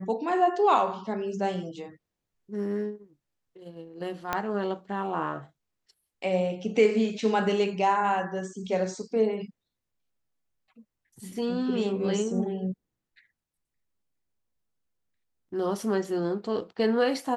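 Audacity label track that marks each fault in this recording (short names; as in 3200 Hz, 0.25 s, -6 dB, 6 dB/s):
4.330000	4.330000	pop -12 dBFS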